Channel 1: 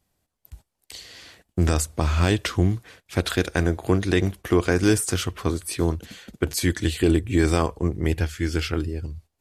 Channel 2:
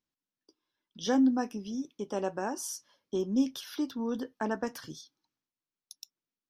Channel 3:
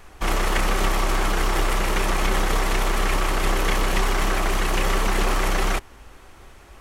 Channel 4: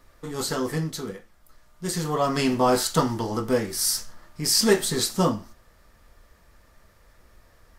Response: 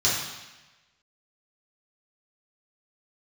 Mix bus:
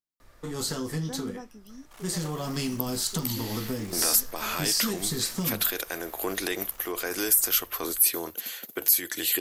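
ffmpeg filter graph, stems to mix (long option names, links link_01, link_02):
-filter_complex "[0:a]alimiter=limit=-14.5dB:level=0:latency=1:release=22,aexciter=amount=11.4:drive=2.9:freq=12000,adelay=2350,volume=2.5dB[link_01];[1:a]volume=-11.5dB[link_02];[2:a]asoftclip=type=tanh:threshold=-25dB,adelay=1700,volume=-19.5dB[link_03];[3:a]highshelf=frequency=7500:gain=-11.5,acrossover=split=270|3000[link_04][link_05][link_06];[link_05]acompressor=threshold=-35dB:ratio=6[link_07];[link_04][link_07][link_06]amix=inputs=3:normalize=0,adelay=200,volume=0dB[link_08];[link_02][link_08]amix=inputs=2:normalize=0,acompressor=threshold=-27dB:ratio=6,volume=0dB[link_09];[link_01][link_03]amix=inputs=2:normalize=0,highpass=480,alimiter=limit=-17dB:level=0:latency=1:release=473,volume=0dB[link_10];[link_09][link_10]amix=inputs=2:normalize=0,highshelf=frequency=7400:gain=11.5"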